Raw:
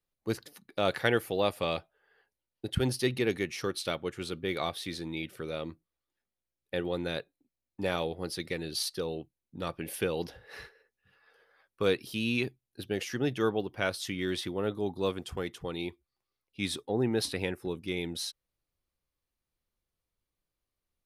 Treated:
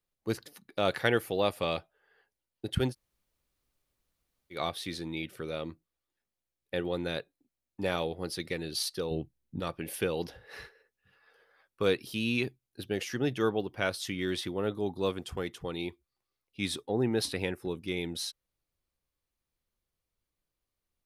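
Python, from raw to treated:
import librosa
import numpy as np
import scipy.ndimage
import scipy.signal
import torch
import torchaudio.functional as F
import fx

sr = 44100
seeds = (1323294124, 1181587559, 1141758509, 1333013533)

y = fx.low_shelf(x, sr, hz=250.0, db=12.0, at=(9.11, 9.6))
y = fx.edit(y, sr, fx.room_tone_fill(start_s=2.9, length_s=1.65, crossfade_s=0.1), tone=tone)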